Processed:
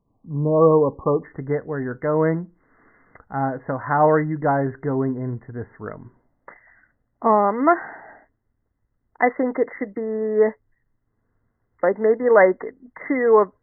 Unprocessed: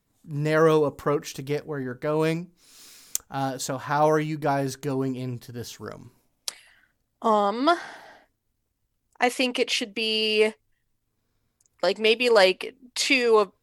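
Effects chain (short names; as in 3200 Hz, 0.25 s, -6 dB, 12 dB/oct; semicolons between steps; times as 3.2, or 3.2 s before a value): brick-wall FIR low-pass 1200 Hz, from 1.23 s 2100 Hz; gain +4.5 dB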